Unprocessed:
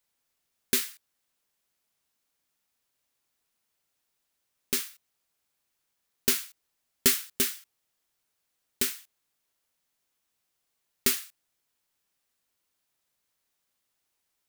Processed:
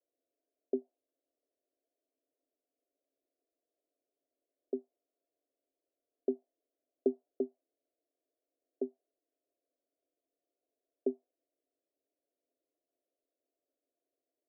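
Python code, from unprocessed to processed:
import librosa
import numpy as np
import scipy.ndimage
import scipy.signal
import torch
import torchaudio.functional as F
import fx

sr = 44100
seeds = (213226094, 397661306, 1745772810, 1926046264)

y = scipy.signal.sosfilt(scipy.signal.cheby1(5, 1.0, [260.0, 700.0], 'bandpass', fs=sr, output='sos'), x)
y = y * librosa.db_to_amplitude(4.0)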